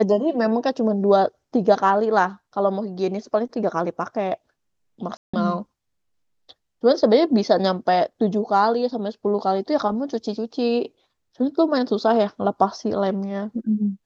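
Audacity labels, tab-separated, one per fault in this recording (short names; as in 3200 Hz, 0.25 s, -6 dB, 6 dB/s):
5.170000	5.330000	gap 0.165 s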